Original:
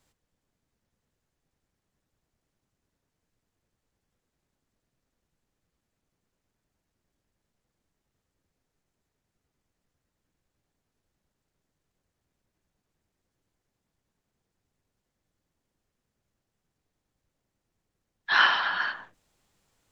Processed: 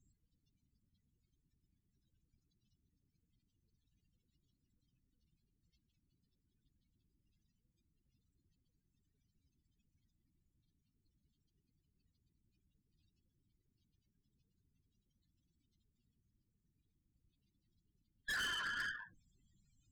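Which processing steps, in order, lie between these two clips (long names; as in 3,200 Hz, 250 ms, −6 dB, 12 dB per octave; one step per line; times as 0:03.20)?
surface crackle 22 per second −49 dBFS
in parallel at −6 dB: bit reduction 4 bits
on the sum: downward compressor 2.5 to 1, threshold −29 dBFS, peak gain reduction 11.5 dB
parametric band 720 Hz −10.5 dB 2.5 octaves
spectral peaks only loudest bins 16
tube saturation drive 42 dB, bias 0.35
level +5 dB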